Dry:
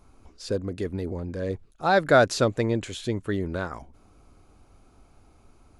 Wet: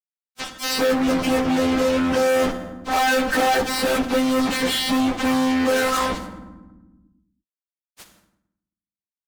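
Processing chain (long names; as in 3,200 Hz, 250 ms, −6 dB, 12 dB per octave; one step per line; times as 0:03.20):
variable-slope delta modulation 32 kbit/s
low-pass filter 1,100 Hz 6 dB per octave
spectral tilt +2 dB per octave
comb filter 5.7 ms, depth 59%
speech leveller within 3 dB 0.5 s
phases set to zero 260 Hz
fuzz pedal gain 47 dB, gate −45 dBFS
time stretch by phase vocoder 1.6×
convolution reverb RT60 0.75 s, pre-delay 5 ms, DRR 13 dB
envelope flattener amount 50%
level −2 dB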